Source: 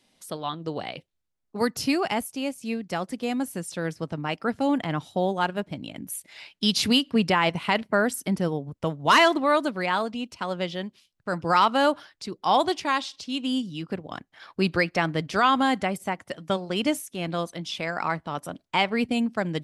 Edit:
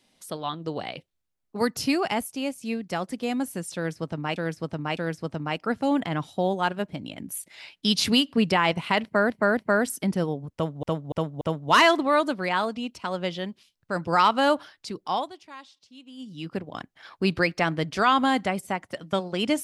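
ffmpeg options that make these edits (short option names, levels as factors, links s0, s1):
-filter_complex "[0:a]asplit=10[s0][s1][s2][s3][s4][s5][s6][s7][s8][s9];[s0]atrim=end=4.362[s10];[s1]atrim=start=3.748:end=4.362[s11];[s2]atrim=start=3.748:end=8.082[s12];[s3]atrim=start=7.808:end=8.082[s13];[s4]atrim=start=7.808:end=9.072[s14];[s5]atrim=start=8.778:end=9.072[s15];[s6]atrim=start=8.778:end=9.072[s16];[s7]atrim=start=8.778:end=12.67,asetpts=PTS-STARTPTS,afade=t=out:st=3.572:d=0.32:silence=0.11885[s17];[s8]atrim=start=12.67:end=13.54,asetpts=PTS-STARTPTS,volume=0.119[s18];[s9]atrim=start=13.54,asetpts=PTS-STARTPTS,afade=t=in:d=0.32:silence=0.11885[s19];[s10][s11]acrossfade=d=0.004:c1=hsin:c2=hsin[s20];[s20][s12]acrossfade=d=0.004:c1=hsin:c2=hsin[s21];[s21][s13]acrossfade=d=0.004:c1=hsin:c2=hsin[s22];[s22][s14]acrossfade=d=0.004:c1=hsin:c2=hsin[s23];[s23][s15]acrossfade=d=0.004:c1=hsin:c2=hsin[s24];[s24][s16]acrossfade=d=0.004:c1=hsin:c2=hsin[s25];[s17][s18][s19]concat=n=3:v=0:a=1[s26];[s25][s26]acrossfade=d=0.004:c1=hsin:c2=hsin"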